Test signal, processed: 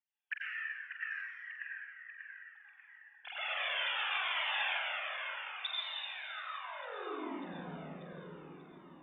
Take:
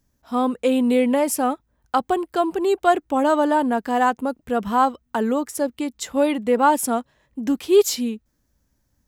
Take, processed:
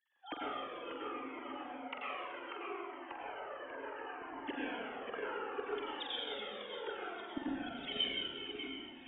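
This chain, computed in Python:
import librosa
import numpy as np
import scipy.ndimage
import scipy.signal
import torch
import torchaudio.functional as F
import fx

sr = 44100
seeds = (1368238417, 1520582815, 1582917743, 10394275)

y = fx.sine_speech(x, sr)
y = fx.tilt_shelf(y, sr, db=-9.5, hz=1400.0)
y = fx.over_compress(y, sr, threshold_db=-31.0, ratio=-1.0)
y = fx.gate_flip(y, sr, shuts_db=-31.0, range_db=-28)
y = fx.doubler(y, sr, ms=45.0, db=-8)
y = fx.echo_split(y, sr, split_hz=2900.0, low_ms=590, high_ms=85, feedback_pct=52, wet_db=-4.5)
y = fx.rev_plate(y, sr, seeds[0], rt60_s=2.6, hf_ratio=0.6, predelay_ms=80, drr_db=-6.5)
y = fx.comb_cascade(y, sr, direction='falling', hz=0.68)
y = F.gain(torch.from_numpy(y), 8.0).numpy()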